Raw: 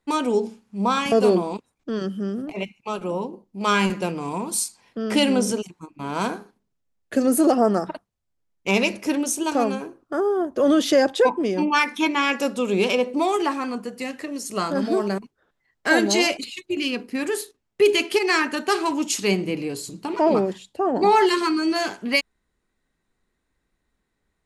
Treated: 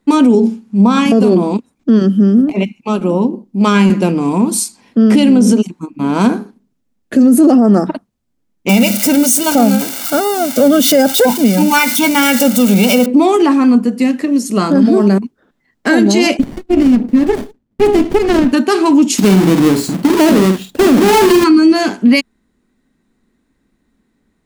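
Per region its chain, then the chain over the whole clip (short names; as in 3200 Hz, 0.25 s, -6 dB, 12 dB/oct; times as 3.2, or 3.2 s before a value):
8.69–13.06 switching spikes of -16.5 dBFS + comb 1.4 ms, depth 79%
16.39–18.53 dynamic EQ 4100 Hz, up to -3 dB, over -36 dBFS, Q 1.2 + phaser 1.5 Hz, delay 3.4 ms, feedback 44% + running maximum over 33 samples
19.18–21.44 half-waves squared off + doubler 48 ms -7.5 dB
whole clip: bell 240 Hz +14.5 dB 0.98 oct; maximiser +8.5 dB; gain -1 dB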